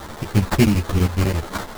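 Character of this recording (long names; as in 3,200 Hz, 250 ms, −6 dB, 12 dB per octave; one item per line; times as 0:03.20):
a quantiser's noise floor 6 bits, dither triangular
chopped level 12 Hz, duty 80%
aliases and images of a low sample rate 2,600 Hz, jitter 20%
a shimmering, thickened sound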